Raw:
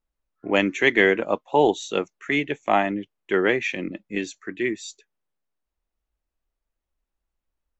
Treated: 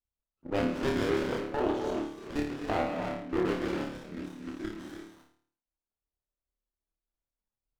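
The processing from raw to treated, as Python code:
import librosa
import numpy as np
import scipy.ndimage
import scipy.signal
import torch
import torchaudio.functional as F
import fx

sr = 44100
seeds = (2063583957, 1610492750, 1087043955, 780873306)

y = fx.pitch_trill(x, sr, semitones=-3.0, every_ms=84)
y = fx.level_steps(y, sr, step_db=11)
y = fx.room_flutter(y, sr, wall_m=4.7, rt60_s=0.54)
y = fx.rev_gated(y, sr, seeds[0], gate_ms=340, shape='rising', drr_db=3.0)
y = fx.running_max(y, sr, window=17)
y = y * 10.0 ** (-8.0 / 20.0)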